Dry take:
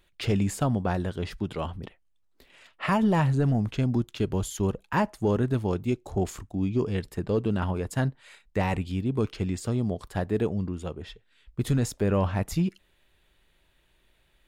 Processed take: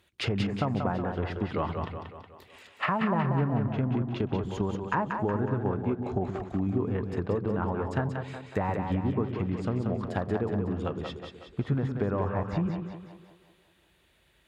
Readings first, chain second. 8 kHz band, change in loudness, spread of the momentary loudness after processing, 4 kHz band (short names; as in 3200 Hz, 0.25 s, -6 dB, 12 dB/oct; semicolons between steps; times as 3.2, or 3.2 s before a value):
under -15 dB, -2.5 dB, 9 LU, -2.0 dB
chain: HPF 59 Hz 24 dB/oct; treble ducked by the level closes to 1400 Hz, closed at -24.5 dBFS; dynamic EQ 1200 Hz, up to +7 dB, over -45 dBFS, Q 0.76; compressor, threshold -26 dBFS, peak gain reduction 9.5 dB; split-band echo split 320 Hz, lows 0.124 s, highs 0.184 s, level -5 dB; gain +1 dB